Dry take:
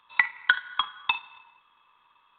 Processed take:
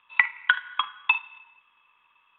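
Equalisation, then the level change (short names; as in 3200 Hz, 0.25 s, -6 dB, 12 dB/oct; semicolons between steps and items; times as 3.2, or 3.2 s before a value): dynamic EQ 1100 Hz, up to +5 dB, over -37 dBFS, Q 1.6; synth low-pass 2700 Hz, resonance Q 3.7; air absorption 62 m; -4.5 dB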